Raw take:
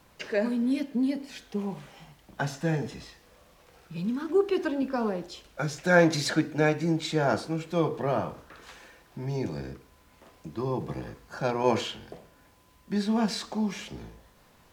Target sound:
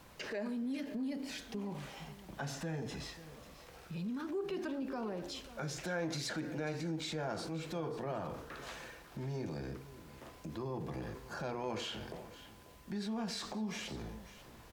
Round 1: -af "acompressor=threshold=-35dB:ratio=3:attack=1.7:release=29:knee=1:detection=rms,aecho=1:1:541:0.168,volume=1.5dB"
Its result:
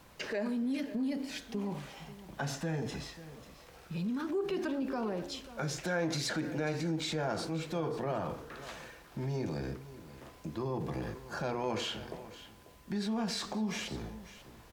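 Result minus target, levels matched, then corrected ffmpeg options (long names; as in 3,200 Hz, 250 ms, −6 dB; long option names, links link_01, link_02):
downward compressor: peak gain reduction −4.5 dB
-af "acompressor=threshold=-42dB:ratio=3:attack=1.7:release=29:knee=1:detection=rms,aecho=1:1:541:0.168,volume=1.5dB"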